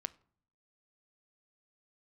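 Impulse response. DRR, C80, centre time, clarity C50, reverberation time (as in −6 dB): 13.0 dB, 25.5 dB, 2 ms, 21.0 dB, 0.55 s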